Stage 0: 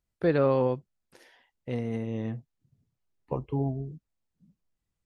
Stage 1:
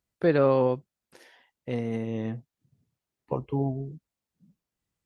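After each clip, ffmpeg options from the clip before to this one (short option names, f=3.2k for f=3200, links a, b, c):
-af "highpass=f=110:p=1,volume=2.5dB"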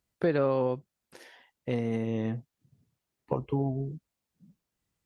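-af "acompressor=threshold=-28dB:ratio=2.5,volume=2.5dB"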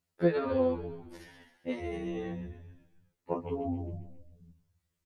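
-filter_complex "[0:a]asplit=2[a][b];[b]asplit=6[c][d][e][f][g][h];[c]adelay=134,afreqshift=-44,volume=-10dB[i];[d]adelay=268,afreqshift=-88,volume=-15.4dB[j];[e]adelay=402,afreqshift=-132,volume=-20.7dB[k];[f]adelay=536,afreqshift=-176,volume=-26.1dB[l];[g]adelay=670,afreqshift=-220,volume=-31.4dB[m];[h]adelay=804,afreqshift=-264,volume=-36.8dB[n];[i][j][k][l][m][n]amix=inputs=6:normalize=0[o];[a][o]amix=inputs=2:normalize=0,afftfilt=real='re*2*eq(mod(b,4),0)':imag='im*2*eq(mod(b,4),0)':win_size=2048:overlap=0.75"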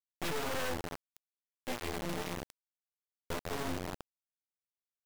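-af "acrusher=bits=3:dc=4:mix=0:aa=0.000001,aeval=exprs='(mod(28.2*val(0)+1,2)-1)/28.2':c=same"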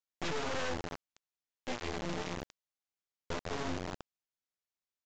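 -af "aresample=16000,aresample=44100"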